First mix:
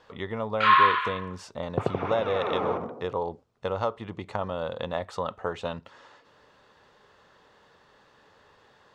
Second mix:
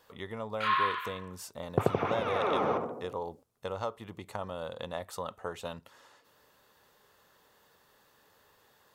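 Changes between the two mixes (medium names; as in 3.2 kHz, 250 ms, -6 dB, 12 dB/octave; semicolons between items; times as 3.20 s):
speech -7.5 dB; first sound -10.5 dB; master: remove distance through air 130 m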